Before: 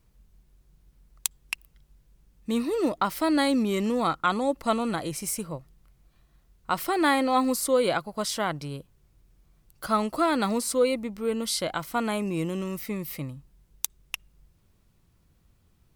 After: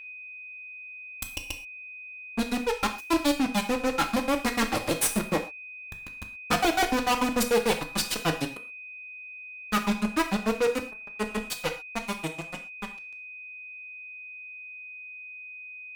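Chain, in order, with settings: comb filter that takes the minimum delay 3.9 ms; Doppler pass-by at 6.13 s, 14 m/s, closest 3.8 m; granulator 95 ms, grains 6.8 per s, spray 100 ms, pitch spread up and down by 0 st; fuzz box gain 57 dB, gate -57 dBFS; whistle 2.5 kHz -33 dBFS; gated-style reverb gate 150 ms falling, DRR 5 dB; trim -7.5 dB

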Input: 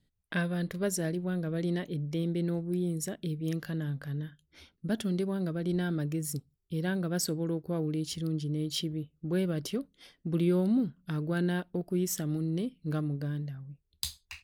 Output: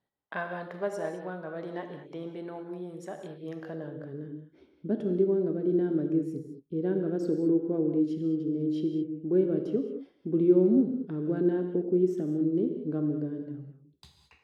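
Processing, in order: gated-style reverb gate 240 ms flat, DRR 4.5 dB; band-pass sweep 860 Hz -> 350 Hz, 3.47–4.27 s; trim +8.5 dB

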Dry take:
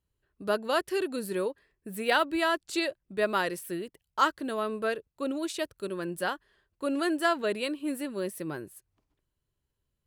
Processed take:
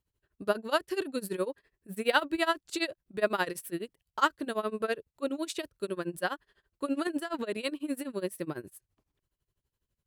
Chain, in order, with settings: 7.07–7.57 s: compressor with a negative ratio -32 dBFS, ratio -1; tremolo 12 Hz, depth 92%; trim +2.5 dB

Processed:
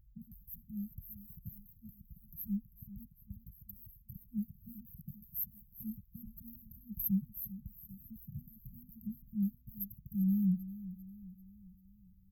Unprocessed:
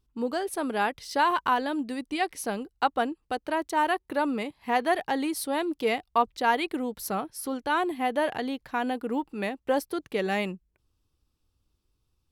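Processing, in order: peaking EQ 260 Hz -10 dB 0.36 oct, from 2.17 s -3.5 dB, from 4.16 s +3.5 dB; brick-wall FIR band-stop 200–12000 Hz; feedback delay 394 ms, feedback 49%, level -15 dB; trim +9.5 dB

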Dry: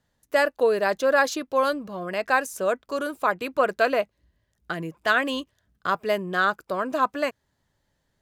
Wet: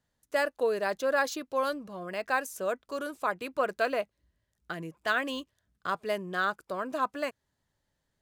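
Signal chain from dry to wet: treble shelf 7.1 kHz +7 dB; decimation joined by straight lines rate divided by 2×; trim -7 dB

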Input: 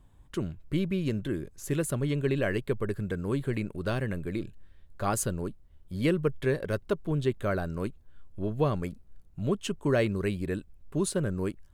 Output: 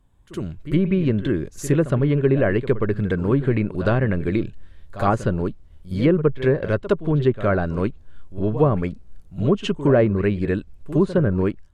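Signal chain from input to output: level rider gain up to 14.5 dB; low-pass that closes with the level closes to 1.3 kHz, closed at -10 dBFS; pre-echo 64 ms -14 dB; trim -3 dB

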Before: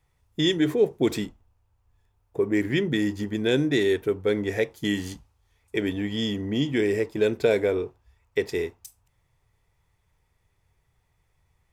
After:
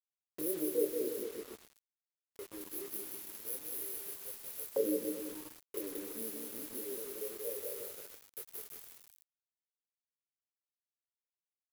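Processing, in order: dead-time distortion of 0.13 ms; FFT band-reject 610–10000 Hz; in parallel at +2.5 dB: peak limiter -18.5 dBFS, peak gain reduction 8 dB; on the sum: chorus voices 6, 0.78 Hz, delay 25 ms, depth 2.5 ms; on a send: bouncing-ball echo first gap 180 ms, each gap 0.85×, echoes 5; on the sum: LFO high-pass saw up 0.21 Hz 850–4100 Hz; bit crusher 8-bit; 1.23–2.61 s: treble shelf 9.1 kHz -6.5 dB; trim +1 dB

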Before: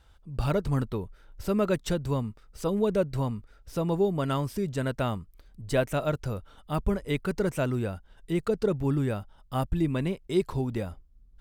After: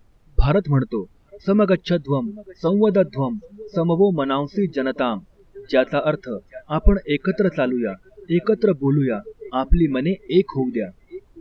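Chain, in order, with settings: steep low-pass 4.9 kHz 48 dB/octave; bass shelf 69 Hz +9.5 dB; on a send: thinning echo 779 ms, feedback 61%, high-pass 150 Hz, level -18 dB; on the sum: spectral noise reduction 27 dB; added noise brown -62 dBFS; trim +8.5 dB

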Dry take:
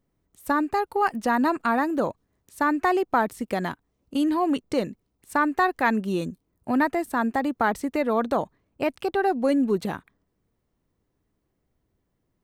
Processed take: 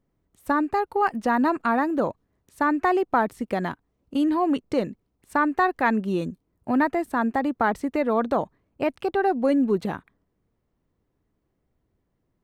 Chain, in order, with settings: treble shelf 4 kHz -9 dB; trim +1 dB

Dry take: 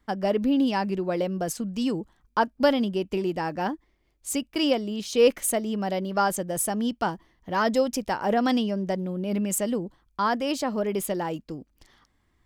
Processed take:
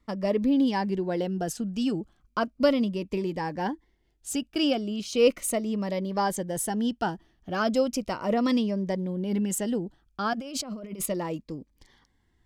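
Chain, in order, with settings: treble shelf 11 kHz -9.5 dB; 10.33–11.06 s: compressor with a negative ratio -35 dBFS, ratio -1; Shepard-style phaser falling 0.36 Hz

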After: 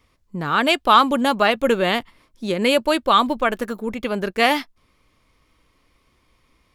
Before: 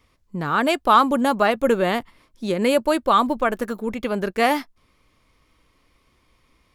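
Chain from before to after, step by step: dynamic bell 3.2 kHz, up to +8 dB, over -38 dBFS, Q 0.97

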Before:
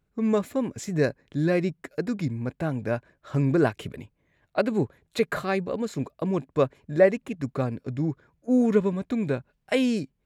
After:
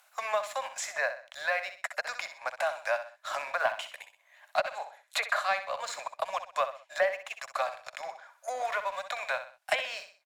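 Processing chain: low-pass that closes with the level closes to 2.3 kHz, closed at -17.5 dBFS; steep high-pass 610 Hz 72 dB/octave; treble shelf 5.7 kHz +8 dB; waveshaping leveller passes 1; on a send: feedback delay 63 ms, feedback 31%, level -11 dB; on the sum: three bands compressed up and down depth 70%

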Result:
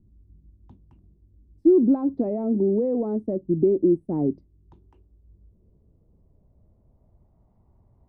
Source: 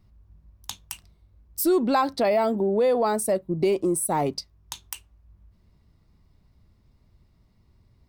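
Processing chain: low-pass sweep 310 Hz -> 780 Hz, 4.36–7.55 s

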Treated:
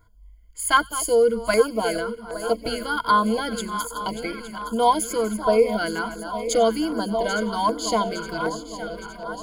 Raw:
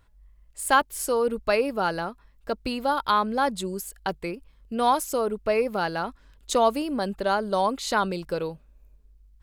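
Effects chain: backward echo that repeats 432 ms, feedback 75%, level -11 dB; rippled EQ curve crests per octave 1.8, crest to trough 17 dB; on a send: feedback echo behind a high-pass 92 ms, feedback 48%, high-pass 2.4 kHz, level -19.5 dB; on the sum: LFO notch saw down 1.3 Hz 390–3000 Hz

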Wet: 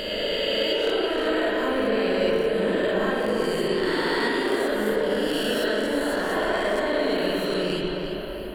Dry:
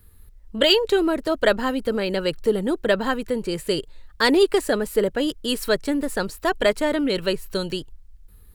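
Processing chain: reverse spectral sustain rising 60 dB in 1.75 s; compression 6:1, threshold -28 dBFS, peak gain reduction 18 dB; on a send: tape echo 341 ms, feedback 71%, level -5 dB, low-pass 3.7 kHz; on the sum: spring tank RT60 1.5 s, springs 38/47/57 ms, chirp 60 ms, DRR -2.5 dB

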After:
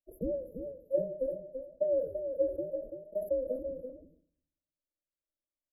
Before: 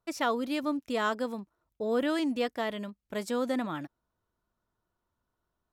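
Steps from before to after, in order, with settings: every band turned upside down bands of 1 kHz; dynamic bell 540 Hz, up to +6 dB, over -43 dBFS, Q 2.8; gate -36 dBFS, range -7 dB; transient shaper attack +10 dB, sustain +6 dB; brick-wall FIR band-stop 640–11000 Hz; distance through air 55 m; static phaser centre 630 Hz, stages 8; delay 336 ms -7.5 dB; reverberation RT60 0.60 s, pre-delay 7 ms, DRR 13.5 dB; decay stretcher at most 120 dB/s; trim -7.5 dB

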